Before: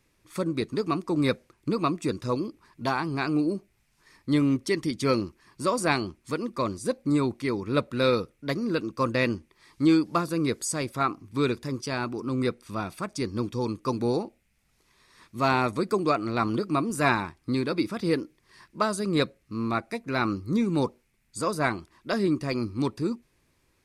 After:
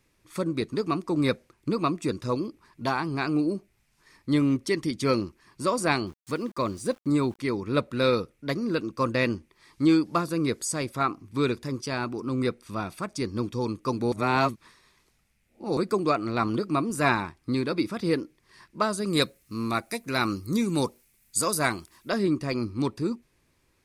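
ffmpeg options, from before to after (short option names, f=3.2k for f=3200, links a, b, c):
-filter_complex "[0:a]asettb=1/sr,asplit=3[a][b][c];[a]atrim=end=6.074[d];[b]atrim=start=6.07:end=7.39,asetpts=PTS-STARTPTS,afade=t=in:d=0.004:c=qsin,afade=t=out:st=1.316:d=0.004:c=qsin,aeval=exprs='val(0)*gte(abs(val(0)),0.00376)':c=same[e];[c]atrim=start=7.386[f];[d][e]acrossfade=d=0.004:c1=hsin:c2=qsin[g];[g][f]acrossfade=d=0.004:c1=qsin:c2=hsin,asettb=1/sr,asplit=3[h][i][j];[h]atrim=end=19.064[k];[i]atrim=start=19.06:end=22.09,asetpts=PTS-STARTPTS,afade=t=in:d=0.004:c=qsin,afade=t=out:st=3.026:d=0.004:c=qsin,aemphasis=mode=production:type=75fm[l];[j]atrim=start=22.086[m];[k][l]acrossfade=d=0.004:c1=hsin:c2=qsin[n];[n][m]acrossfade=d=0.004:c1=qsin:c2=hsin,asplit=3[o][p][q];[o]atrim=end=14.122[r];[p]atrim=start=14.118:end=15.772,asetpts=PTS-STARTPTS,areverse[s];[q]atrim=start=15.768[t];[r][s]acrossfade=d=0.004:c1=hsin:c2=hsin[u];[u][t]acrossfade=d=0.004:c1=hsin:c2=hsin"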